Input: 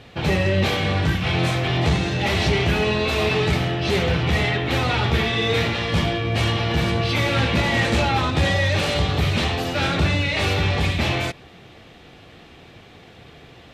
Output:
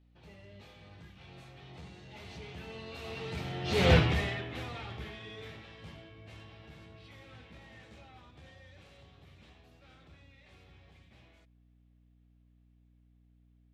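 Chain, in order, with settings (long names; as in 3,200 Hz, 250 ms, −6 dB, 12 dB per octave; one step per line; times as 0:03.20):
source passing by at 0:03.93, 15 m/s, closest 1.1 metres
mains hum 60 Hz, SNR 26 dB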